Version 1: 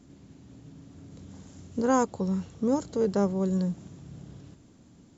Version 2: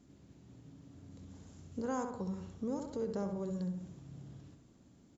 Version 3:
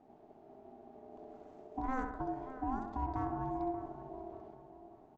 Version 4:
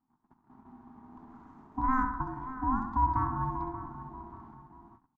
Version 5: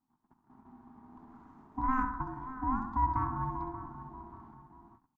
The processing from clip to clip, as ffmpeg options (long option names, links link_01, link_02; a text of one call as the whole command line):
ffmpeg -i in.wav -filter_complex "[0:a]asplit=2[link_01][link_02];[link_02]adelay=66,lowpass=frequency=2500:poles=1,volume=-6dB,asplit=2[link_03][link_04];[link_04]adelay=66,lowpass=frequency=2500:poles=1,volume=0.47,asplit=2[link_05][link_06];[link_06]adelay=66,lowpass=frequency=2500:poles=1,volume=0.47,asplit=2[link_07][link_08];[link_08]adelay=66,lowpass=frequency=2500:poles=1,volume=0.47,asplit=2[link_09][link_10];[link_10]adelay=66,lowpass=frequency=2500:poles=1,volume=0.47,asplit=2[link_11][link_12];[link_12]adelay=66,lowpass=frequency=2500:poles=1,volume=0.47[link_13];[link_01][link_03][link_05][link_07][link_09][link_11][link_13]amix=inputs=7:normalize=0,acompressor=threshold=-29dB:ratio=2,volume=-8dB" out.wav
ffmpeg -i in.wav -filter_complex "[0:a]asplit=2[link_01][link_02];[link_02]adelay=584,lowpass=frequency=1600:poles=1,volume=-12dB,asplit=2[link_03][link_04];[link_04]adelay=584,lowpass=frequency=1600:poles=1,volume=0.38,asplit=2[link_05][link_06];[link_06]adelay=584,lowpass=frequency=1600:poles=1,volume=0.38,asplit=2[link_07][link_08];[link_08]adelay=584,lowpass=frequency=1600:poles=1,volume=0.38[link_09];[link_01][link_03][link_05][link_07][link_09]amix=inputs=5:normalize=0,aeval=exprs='val(0)*sin(2*PI*520*n/s)':channel_layout=same,adynamicsmooth=sensitivity=1.5:basefreq=2200,volume=3.5dB" out.wav
ffmpeg -i in.wav -af "agate=range=-22dB:threshold=-55dB:ratio=16:detection=peak,firequalizer=gain_entry='entry(260,0);entry(400,-21);entry(610,-27);entry(960,6);entry(2600,-11)':delay=0.05:min_phase=1,volume=8.5dB" out.wav
ffmpeg -i in.wav -af "aeval=exprs='0.2*(cos(1*acos(clip(val(0)/0.2,-1,1)))-cos(1*PI/2))+0.0141*(cos(2*acos(clip(val(0)/0.2,-1,1)))-cos(2*PI/2))':channel_layout=same,volume=-2.5dB" out.wav